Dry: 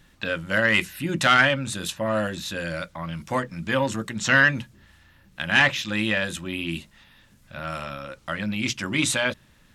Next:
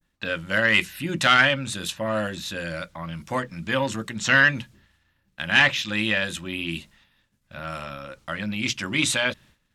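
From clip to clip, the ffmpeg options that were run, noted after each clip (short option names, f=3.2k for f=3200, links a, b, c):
-af "agate=range=-33dB:threshold=-46dB:ratio=3:detection=peak,adynamicequalizer=threshold=0.0251:dfrequency=3200:dqfactor=0.72:tfrequency=3200:tqfactor=0.72:attack=5:release=100:ratio=0.375:range=2:mode=boostabove:tftype=bell,volume=-1.5dB"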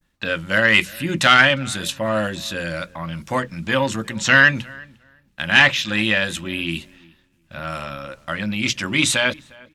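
-filter_complex "[0:a]asplit=2[a][b];[b]adelay=355,lowpass=f=1.9k:p=1,volume=-23dB,asplit=2[c][d];[d]adelay=355,lowpass=f=1.9k:p=1,volume=0.18[e];[a][c][e]amix=inputs=3:normalize=0,volume=4.5dB"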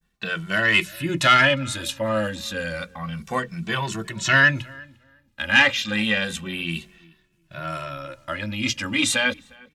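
-filter_complex "[0:a]asplit=2[a][b];[b]adelay=2.2,afreqshift=-0.3[c];[a][c]amix=inputs=2:normalize=1"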